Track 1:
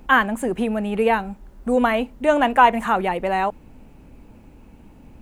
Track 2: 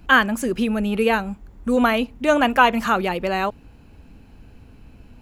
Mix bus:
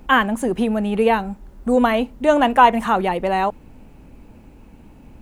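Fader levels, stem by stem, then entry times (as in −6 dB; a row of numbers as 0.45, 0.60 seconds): +1.5, −12.5 decibels; 0.00, 0.00 seconds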